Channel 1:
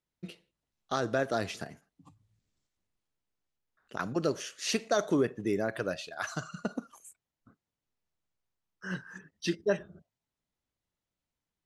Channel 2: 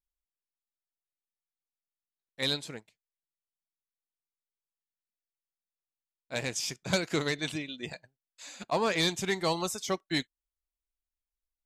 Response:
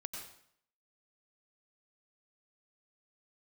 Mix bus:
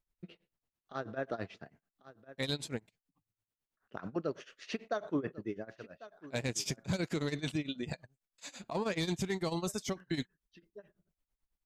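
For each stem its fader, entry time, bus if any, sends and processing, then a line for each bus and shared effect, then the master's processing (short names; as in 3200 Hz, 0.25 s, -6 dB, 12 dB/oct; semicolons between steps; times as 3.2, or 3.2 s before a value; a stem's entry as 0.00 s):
-2.0 dB, 0.00 s, no send, echo send -18.5 dB, LPF 2900 Hz 12 dB/oct; auto duck -20 dB, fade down 1.00 s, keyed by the second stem
+1.5 dB, 0.00 s, no send, no echo send, low shelf 380 Hz +10 dB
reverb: off
echo: echo 1.095 s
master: tremolo 9.1 Hz, depth 91%; limiter -24 dBFS, peak gain reduction 14 dB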